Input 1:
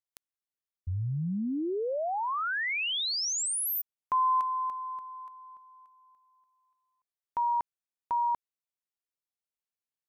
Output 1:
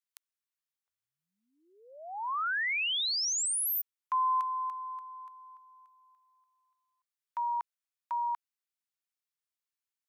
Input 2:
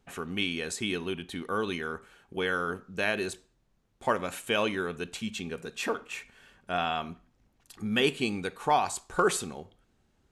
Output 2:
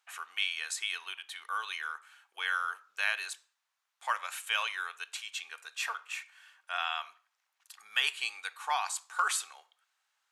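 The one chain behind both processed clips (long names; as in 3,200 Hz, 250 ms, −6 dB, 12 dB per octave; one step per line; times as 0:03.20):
high-pass filter 1,000 Hz 24 dB per octave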